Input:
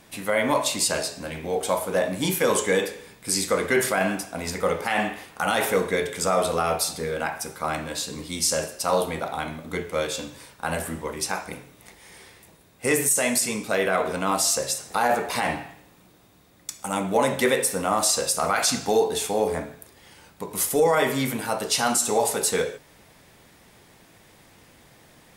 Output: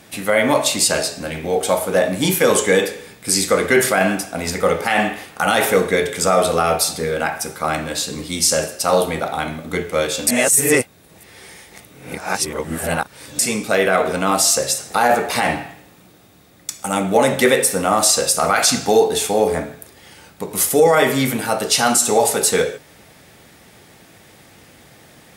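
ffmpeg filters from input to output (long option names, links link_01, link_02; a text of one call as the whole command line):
ffmpeg -i in.wav -filter_complex "[0:a]asplit=3[link_01][link_02][link_03];[link_01]atrim=end=10.272[link_04];[link_02]atrim=start=10.268:end=13.392,asetpts=PTS-STARTPTS,areverse[link_05];[link_03]atrim=start=13.388[link_06];[link_04][link_05]acrossfade=duration=0.004:curve1=hsin:curve2=hsin[link_07];[link_07][link_06]acrossfade=duration=0.004:curve1=hsin:curve2=hsin,highpass=57,bandreject=frequency=1000:width=9.4,volume=7dB" out.wav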